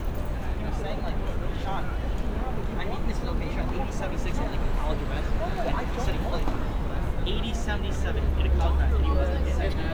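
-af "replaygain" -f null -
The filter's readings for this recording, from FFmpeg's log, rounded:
track_gain = +14.3 dB
track_peak = 0.179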